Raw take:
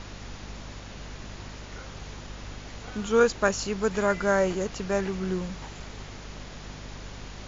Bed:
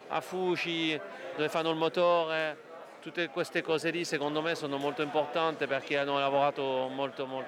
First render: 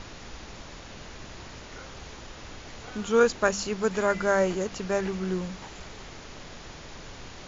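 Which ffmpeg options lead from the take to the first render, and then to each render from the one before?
-af "bandreject=f=50:t=h:w=4,bandreject=f=100:t=h:w=4,bandreject=f=150:t=h:w=4,bandreject=f=200:t=h:w=4,bandreject=f=250:t=h:w=4"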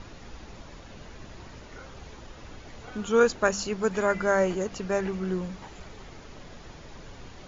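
-af "afftdn=nr=7:nf=-44"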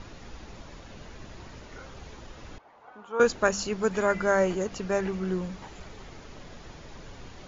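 -filter_complex "[0:a]asettb=1/sr,asplit=3[s0][s1][s2];[s0]atrim=end=2.584[s3];[s1]atrim=start=2.58:end=3.2,asetpts=PTS-STARTPTS,afade=t=in:d=0.004:c=qsin,afade=t=out:st=0.616:d=0.004:c=qsin,bandpass=f=910:t=q:w=2.2[s4];[s2]atrim=start=3.196[s5];[s3][s4]acrossfade=d=0.004:c1=hsin:c2=qsin[s6];[s6][s5]acrossfade=d=0.004:c1=qsin:c2=hsin"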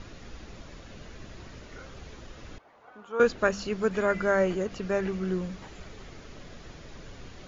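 -filter_complex "[0:a]acrossover=split=4900[s0][s1];[s1]acompressor=threshold=0.00126:ratio=4:attack=1:release=60[s2];[s0][s2]amix=inputs=2:normalize=0,equalizer=f=890:t=o:w=0.5:g=-5.5"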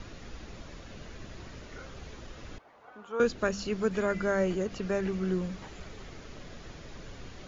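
-filter_complex "[0:a]acrossover=split=380|3000[s0][s1][s2];[s1]acompressor=threshold=0.0126:ratio=1.5[s3];[s0][s3][s2]amix=inputs=3:normalize=0"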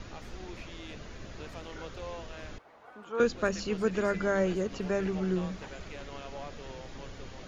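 -filter_complex "[1:a]volume=0.15[s0];[0:a][s0]amix=inputs=2:normalize=0"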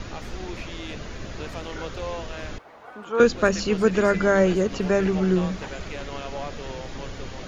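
-af "volume=2.82"

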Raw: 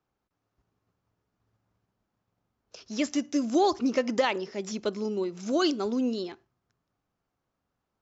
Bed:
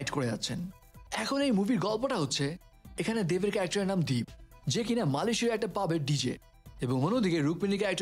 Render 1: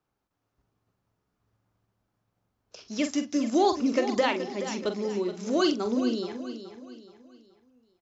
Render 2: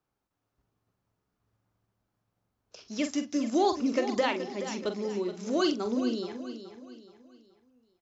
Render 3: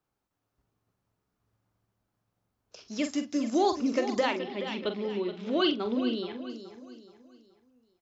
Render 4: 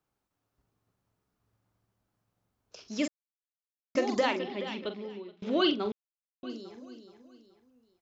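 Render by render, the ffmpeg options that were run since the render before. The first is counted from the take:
-filter_complex "[0:a]asplit=2[s0][s1];[s1]adelay=44,volume=0.376[s2];[s0][s2]amix=inputs=2:normalize=0,aecho=1:1:425|850|1275|1700:0.282|0.107|0.0407|0.0155"
-af "volume=0.75"
-filter_complex "[0:a]asettb=1/sr,asplit=3[s0][s1][s2];[s0]atrim=end=2.984[s3];[s1]atrim=start=2.98:end=3.45,asetpts=PTS-STARTPTS,afade=t=in:d=0.004:c=qsin,afade=t=out:st=0.466:d=0.004:c=qsin,bandreject=f=5900:w=12[s4];[s2]atrim=start=3.446[s5];[s3][s4]acrossfade=d=0.004:c1=hsin:c2=qsin[s6];[s6][s5]acrossfade=d=0.004:c1=qsin:c2=hsin,asettb=1/sr,asplit=3[s7][s8][s9];[s7]atrim=end=4.394[s10];[s8]atrim=start=4.39:end=6.5,asetpts=PTS-STARTPTS,afade=t=in:d=0.004:c=qsin,afade=t=out:st=2.106:d=0.004:c=qsin,highshelf=f=4700:t=q:w=3:g=-12.5[s11];[s9]atrim=start=6.496[s12];[s10][s11]acrossfade=d=0.004:c1=hsin:c2=qsin[s13];[s13][s12]acrossfade=d=0.004:c1=qsin:c2=hsin"
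-filter_complex "[0:a]asplit=6[s0][s1][s2][s3][s4][s5];[s0]atrim=end=3.08,asetpts=PTS-STARTPTS,afade=t=out:st=3.076:d=0.004:c=hsin[s6];[s1]atrim=start=3.08:end=3.95,asetpts=PTS-STARTPTS,volume=0[s7];[s2]atrim=start=3.95:end=5.42,asetpts=PTS-STARTPTS,afade=t=in:d=0.004:c=hsin,afade=t=out:st=0.51:d=0.96:silence=0.0668344[s8];[s3]atrim=start=5.42:end=5.92,asetpts=PTS-STARTPTS,afade=t=in:d=0.004:c=hsin:silence=0.0668344,afade=t=out:st=0.496:d=0.004:c=hsin[s9];[s4]atrim=start=5.92:end=6.43,asetpts=PTS-STARTPTS,volume=0[s10];[s5]atrim=start=6.43,asetpts=PTS-STARTPTS,afade=t=in:d=0.004:c=hsin[s11];[s6][s7][s8][s9][s10][s11]concat=n=6:v=0:a=1"

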